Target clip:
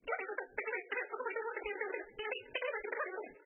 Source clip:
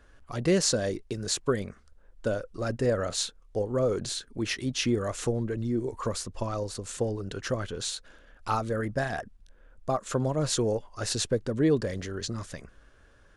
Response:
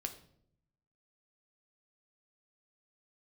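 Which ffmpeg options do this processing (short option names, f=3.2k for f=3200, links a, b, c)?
-filter_complex "[0:a]agate=range=-22dB:threshold=-53dB:ratio=16:detection=peak,asetrate=170667,aresample=44100,equalizer=f=125:t=o:w=1:g=-7,equalizer=f=1k:t=o:w=1:g=-9,equalizer=f=2k:t=o:w=1:g=-4,equalizer=f=8k:t=o:w=1:g=-10,acompressor=threshold=-41dB:ratio=6,acrossover=split=180 7800:gain=0.178 1 0.0891[a][b][c];[a][b][c]amix=inputs=3:normalize=0,asplit=2[d][e];[e]adelay=517,lowpass=f=2.3k:p=1,volume=-17.5dB,asplit=2[f][g];[g]adelay=517,lowpass=f=2.3k:p=1,volume=0.4,asplit=2[h][i];[i]adelay=517,lowpass=f=2.3k:p=1,volume=0.4[j];[d][f][h][j]amix=inputs=4:normalize=0,asplit=2[k][l];[1:a]atrim=start_sample=2205,afade=t=out:st=0.3:d=0.01,atrim=end_sample=13671,adelay=24[m];[l][m]afir=irnorm=-1:irlink=0,volume=-8dB[n];[k][n]amix=inputs=2:normalize=0,volume=5.5dB" -ar 22050 -c:a libmp3lame -b:a 8k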